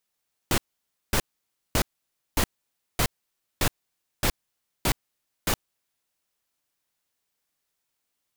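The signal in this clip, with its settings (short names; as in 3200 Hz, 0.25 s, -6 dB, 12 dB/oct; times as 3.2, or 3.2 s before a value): noise bursts pink, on 0.07 s, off 0.55 s, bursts 9, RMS -22 dBFS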